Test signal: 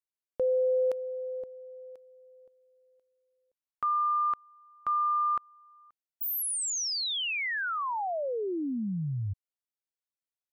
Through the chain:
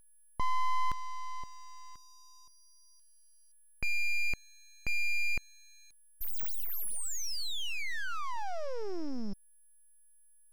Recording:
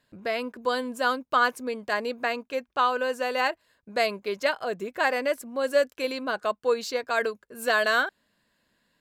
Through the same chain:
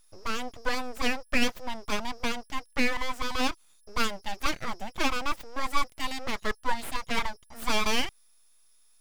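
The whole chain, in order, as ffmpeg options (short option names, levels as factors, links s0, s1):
-af "aeval=exprs='val(0)+0.00141*sin(2*PI*5300*n/s)':c=same,aeval=exprs='abs(val(0))':c=same"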